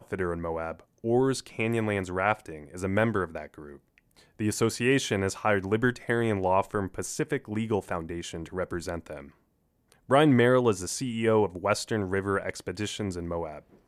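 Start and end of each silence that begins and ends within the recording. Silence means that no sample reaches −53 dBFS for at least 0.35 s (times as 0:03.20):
0:09.34–0:09.92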